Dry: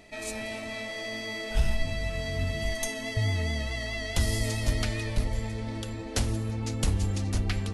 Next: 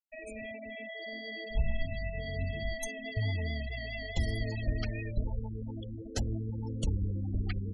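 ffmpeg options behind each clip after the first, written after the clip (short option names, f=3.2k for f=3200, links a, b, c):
-af "afftfilt=real='re*gte(hypot(re,im),0.0447)':imag='im*gte(hypot(re,im),0.0447)':win_size=1024:overlap=0.75,volume=-4.5dB"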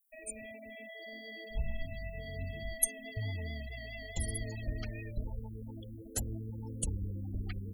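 -af "aexciter=amount=9.9:drive=8.9:freq=8k,volume=-5.5dB"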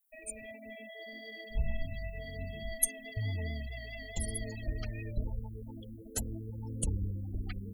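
-af "aphaser=in_gain=1:out_gain=1:delay=4.9:decay=0.3:speed=0.58:type=sinusoidal"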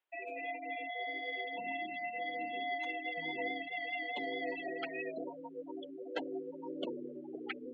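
-af "highpass=f=270:t=q:w=0.5412,highpass=f=270:t=q:w=1.307,lowpass=f=3.3k:t=q:w=0.5176,lowpass=f=3.3k:t=q:w=0.7071,lowpass=f=3.3k:t=q:w=1.932,afreqshift=53,volume=7.5dB"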